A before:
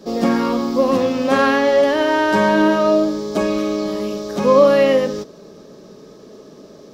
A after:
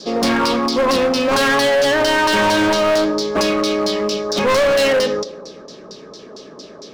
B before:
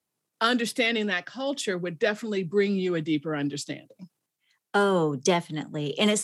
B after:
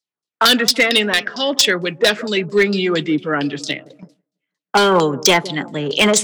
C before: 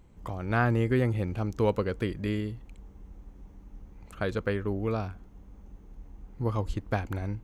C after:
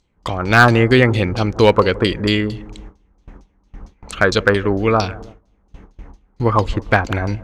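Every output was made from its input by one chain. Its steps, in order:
tone controls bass -4 dB, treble +12 dB; feedback echo behind a low-pass 165 ms, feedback 46%, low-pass 740 Hz, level -17 dB; LFO low-pass saw down 4.4 Hz 970–5200 Hz; treble shelf 5.3 kHz +7 dB; gate with hold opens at -40 dBFS; hard clipper -16 dBFS; normalise loudness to -16 LUFS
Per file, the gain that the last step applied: +3.0 dB, +9.0 dB, +14.5 dB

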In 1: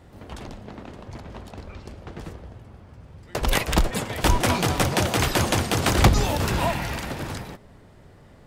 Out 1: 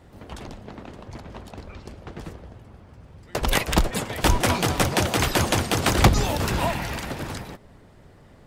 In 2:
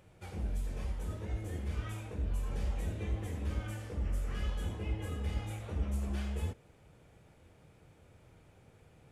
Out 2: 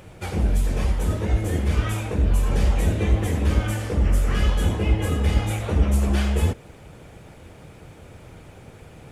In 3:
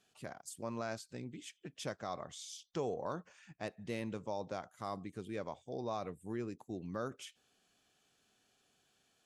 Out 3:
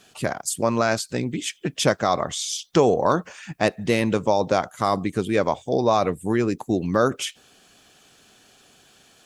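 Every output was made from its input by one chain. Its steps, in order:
harmonic-percussive split harmonic -4 dB; normalise loudness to -23 LUFS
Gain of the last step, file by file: +1.5 dB, +18.5 dB, +22.0 dB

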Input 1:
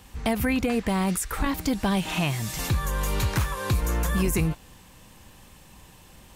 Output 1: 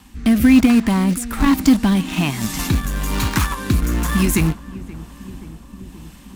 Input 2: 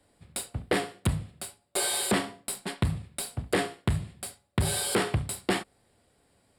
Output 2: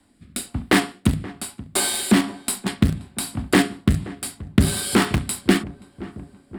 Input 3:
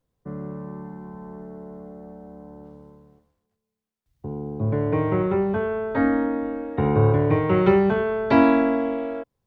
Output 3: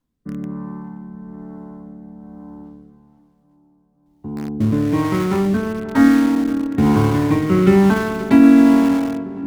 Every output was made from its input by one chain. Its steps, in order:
ten-band graphic EQ 125 Hz -6 dB, 250 Hz +11 dB, 500 Hz -12 dB, 1 kHz +4 dB; in parallel at -10.5 dB: bit crusher 4-bit; on the sum: rotary cabinet horn 1.1 Hz; filtered feedback delay 527 ms, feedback 76%, low-pass 1.5 kHz, level -18 dB; loudness maximiser +4.5 dB; peak normalisation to -1.5 dBFS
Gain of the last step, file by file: +1.5 dB, +4.0 dB, -0.5 dB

